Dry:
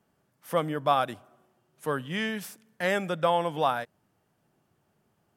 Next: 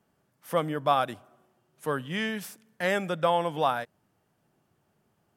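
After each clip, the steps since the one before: no audible change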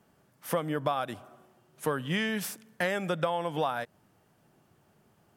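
compression 16:1, threshold -31 dBFS, peak gain reduction 14.5 dB; trim +6 dB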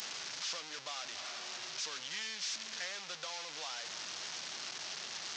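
one-bit delta coder 32 kbps, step -24.5 dBFS; differentiator

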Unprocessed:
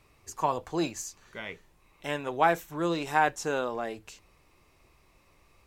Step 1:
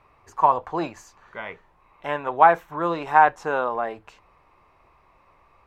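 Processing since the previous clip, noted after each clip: FFT filter 330 Hz 0 dB, 1 kHz +12 dB, 7.2 kHz -13 dB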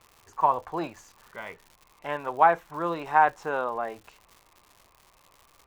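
crackle 200 per s -37 dBFS; trim -4.5 dB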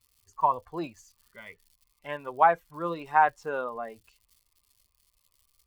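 expander on every frequency bin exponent 1.5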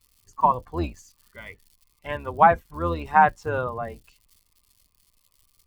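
octave divider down 2 oct, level +3 dB; trim +4.5 dB

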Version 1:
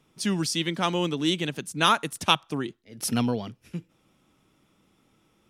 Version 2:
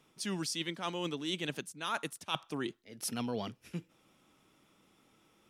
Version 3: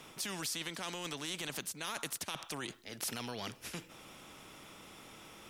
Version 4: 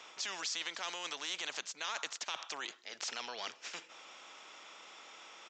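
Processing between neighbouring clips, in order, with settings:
bass shelf 210 Hz -8.5 dB; reverse; compression 16:1, threshold -32 dBFS, peak gain reduction 18.5 dB; reverse
peak limiter -30 dBFS, peak gain reduction 11.5 dB; spectrum-flattening compressor 2:1; trim +8.5 dB
high-pass 640 Hz 12 dB/octave; resampled via 16 kHz; trim +2 dB

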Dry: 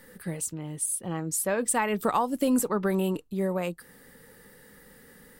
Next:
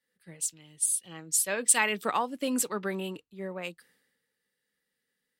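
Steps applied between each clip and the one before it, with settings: frequency weighting D; three bands expanded up and down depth 100%; trim -7 dB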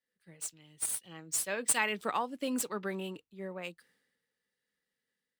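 median filter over 3 samples; level rider gain up to 3.5 dB; trim -7.5 dB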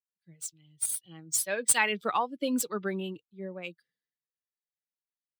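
expander on every frequency bin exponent 1.5; trim +6 dB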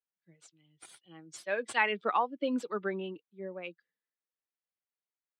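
band-pass 250–2500 Hz

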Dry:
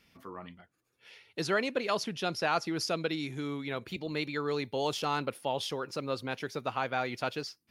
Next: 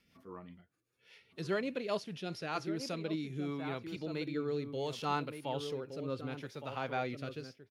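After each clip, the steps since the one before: echo from a far wall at 200 m, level -8 dB; harmonic-percussive split percussive -9 dB; rotary cabinet horn 5 Hz, later 0.7 Hz, at 2.30 s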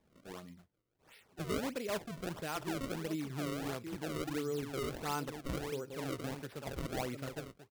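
in parallel at 0 dB: peak limiter -30 dBFS, peak gain reduction 10 dB; on the sum: decimation with a swept rate 30×, swing 160% 1.5 Hz; trim -6 dB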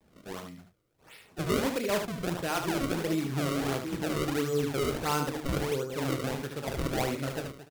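vibrato 0.44 Hz 30 cents; on a send: early reflections 29 ms -11 dB, 75 ms -7 dB; on the sum: trim +7.5 dB

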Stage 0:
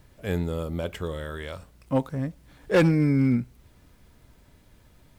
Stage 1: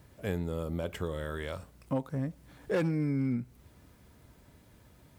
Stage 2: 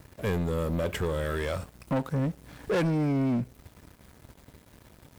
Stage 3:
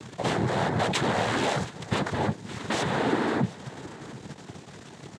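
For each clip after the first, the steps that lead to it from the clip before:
high-pass 61 Hz; peaking EQ 3.4 kHz -3 dB 2.1 oct; compression 3:1, threshold -30 dBFS, peak gain reduction 10.5 dB
waveshaping leveller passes 3; trim -2 dB
Chebyshev shaper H 5 -6 dB, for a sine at -21 dBFS; noise-vocoded speech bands 6; delay 720 ms -18.5 dB; trim +1.5 dB

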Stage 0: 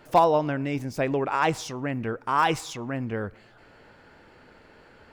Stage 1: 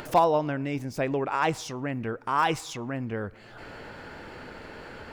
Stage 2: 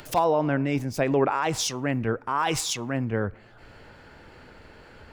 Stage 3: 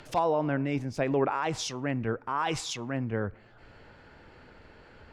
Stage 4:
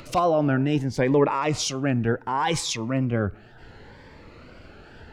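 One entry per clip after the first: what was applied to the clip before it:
upward compressor, threshold -28 dBFS; trim -2 dB
peak limiter -21.5 dBFS, peak gain reduction 10 dB; three bands expanded up and down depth 100%; trim +6 dB
distance through air 59 m; trim -4 dB
wow and flutter 90 cents; Shepard-style phaser rising 0.69 Hz; trim +8 dB

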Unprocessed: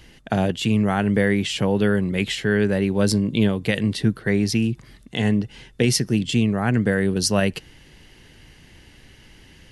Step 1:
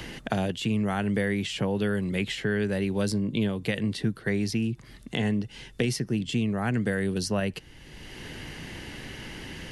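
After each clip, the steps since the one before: three bands compressed up and down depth 70%; trim -7 dB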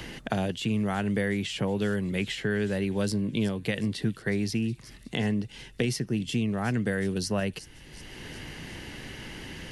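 feedback echo behind a high-pass 367 ms, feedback 61%, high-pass 5.1 kHz, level -11 dB; trim -1 dB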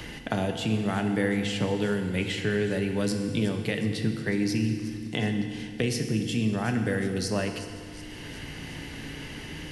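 FDN reverb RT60 2.2 s, low-frequency decay 1.35×, high-frequency decay 0.9×, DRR 4.5 dB

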